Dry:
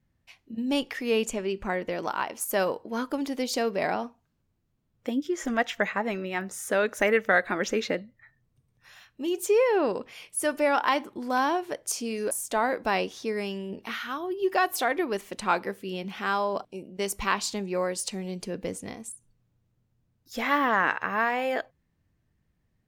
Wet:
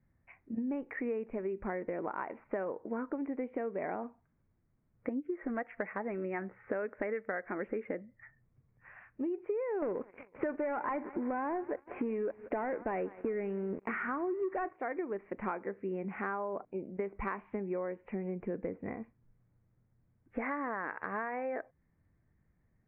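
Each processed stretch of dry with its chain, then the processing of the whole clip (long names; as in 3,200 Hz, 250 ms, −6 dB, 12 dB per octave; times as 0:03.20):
0:09.82–0:14.73: noise gate −45 dBFS, range −10 dB + repeating echo 185 ms, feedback 48%, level −24 dB + leveller curve on the samples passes 3
whole clip: Butterworth low-pass 2,300 Hz 72 dB per octave; dynamic equaliser 370 Hz, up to +6 dB, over −40 dBFS, Q 0.89; downward compressor 10 to 1, threshold −33 dBFS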